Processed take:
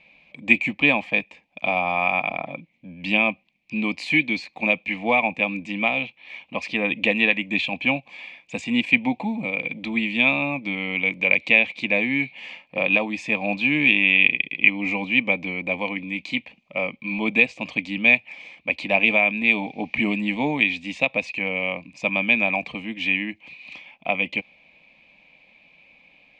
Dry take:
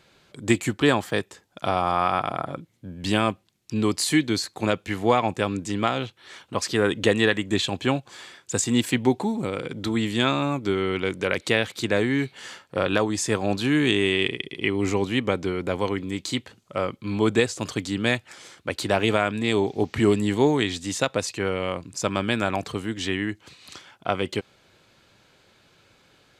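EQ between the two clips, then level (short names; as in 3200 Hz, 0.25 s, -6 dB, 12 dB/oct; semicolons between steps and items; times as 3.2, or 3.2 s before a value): synth low-pass 2400 Hz, resonance Q 13; fixed phaser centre 390 Hz, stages 6; 0.0 dB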